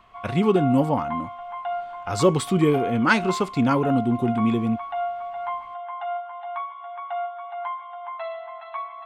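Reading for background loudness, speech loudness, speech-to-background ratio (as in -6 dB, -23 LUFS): -32.0 LUFS, -22.0 LUFS, 10.0 dB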